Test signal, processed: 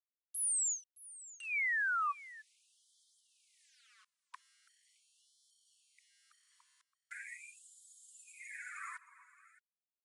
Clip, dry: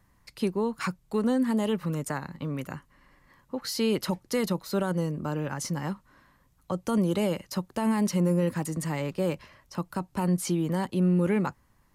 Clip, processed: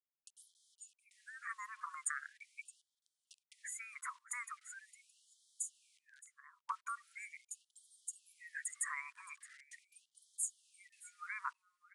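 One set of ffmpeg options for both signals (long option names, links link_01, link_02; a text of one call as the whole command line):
ffmpeg -i in.wav -filter_complex "[0:a]highpass=480,afftdn=noise_reduction=21:noise_floor=-42,acompressor=threshold=-41dB:ratio=12,asuperstop=centerf=4100:order=20:qfactor=0.95,acrusher=bits=11:mix=0:aa=0.000001,acompressor=mode=upward:threshold=-49dB:ratio=2.5,asplit=2[link_01][link_02];[link_02]aecho=0:1:619:0.119[link_03];[link_01][link_03]amix=inputs=2:normalize=0,aresample=22050,aresample=44100,afftfilt=real='re*gte(b*sr/1024,930*pow(3100/930,0.5+0.5*sin(2*PI*0.41*pts/sr)))':imag='im*gte(b*sr/1024,930*pow(3100/930,0.5+0.5*sin(2*PI*0.41*pts/sr)))':win_size=1024:overlap=0.75,volume=9dB" out.wav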